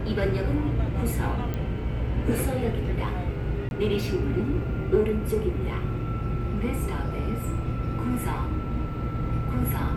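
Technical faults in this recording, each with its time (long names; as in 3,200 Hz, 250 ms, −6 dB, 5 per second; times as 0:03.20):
0:01.54: click −18 dBFS
0:03.69–0:03.71: drop-out 21 ms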